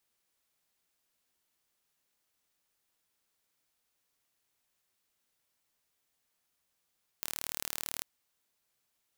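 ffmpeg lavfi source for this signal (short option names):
-f lavfi -i "aevalsrc='0.376*eq(mod(n,1161),0)':d=0.79:s=44100"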